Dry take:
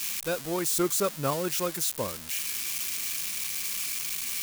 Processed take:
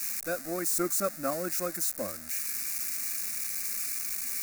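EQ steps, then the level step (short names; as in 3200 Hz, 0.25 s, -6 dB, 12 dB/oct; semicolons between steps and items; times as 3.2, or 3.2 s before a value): fixed phaser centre 640 Hz, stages 8; 0.0 dB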